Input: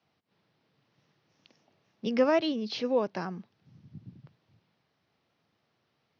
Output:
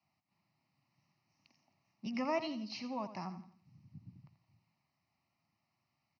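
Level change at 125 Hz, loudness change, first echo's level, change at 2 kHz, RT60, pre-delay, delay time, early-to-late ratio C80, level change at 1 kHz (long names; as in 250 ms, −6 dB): −6.5 dB, −10.5 dB, −12.0 dB, −8.5 dB, no reverb audible, no reverb audible, 85 ms, no reverb audible, −6.0 dB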